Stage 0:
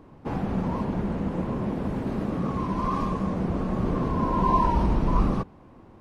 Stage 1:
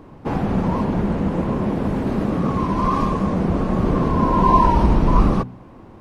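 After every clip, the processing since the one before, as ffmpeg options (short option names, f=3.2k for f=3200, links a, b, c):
-af "bandreject=f=62.01:t=h:w=4,bandreject=f=124.02:t=h:w=4,bandreject=f=186.03:t=h:w=4,bandreject=f=248.04:t=h:w=4,volume=7.5dB"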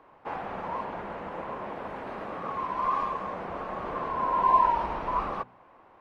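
-filter_complex "[0:a]acrossover=split=550 3100:gain=0.0794 1 0.178[a][b][c];[a][b][c]amix=inputs=3:normalize=0,volume=-4.5dB"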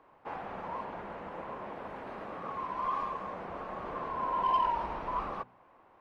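-af "asoftclip=type=tanh:threshold=-15dB,volume=-5dB"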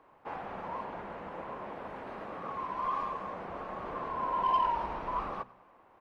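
-af "aecho=1:1:98|196|294|392:0.0794|0.0437|0.024|0.0132"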